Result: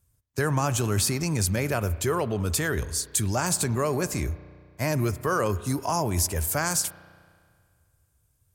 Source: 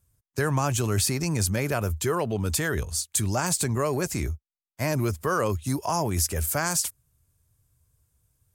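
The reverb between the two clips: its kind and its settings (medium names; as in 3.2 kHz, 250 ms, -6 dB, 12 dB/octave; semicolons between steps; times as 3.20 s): spring tank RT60 2 s, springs 33 ms, chirp 30 ms, DRR 15 dB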